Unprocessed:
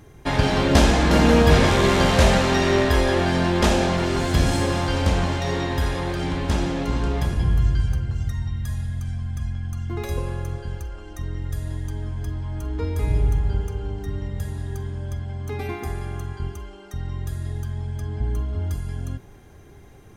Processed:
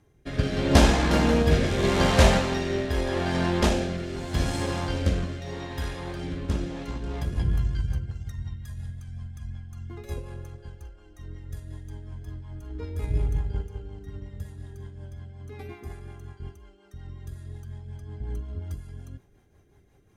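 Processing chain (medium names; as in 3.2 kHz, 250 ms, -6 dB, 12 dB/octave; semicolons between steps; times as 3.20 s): Chebyshev shaper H 8 -31 dB, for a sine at -2.5 dBFS; rotary cabinet horn 0.8 Hz, later 5.5 Hz, at 6.51 s; upward expansion 1.5:1, over -35 dBFS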